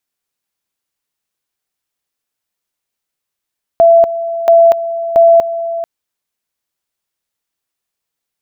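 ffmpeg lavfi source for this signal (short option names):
-f lavfi -i "aevalsrc='pow(10,(-3-13*gte(mod(t,0.68),0.24))/20)*sin(2*PI*671*t)':d=2.04:s=44100"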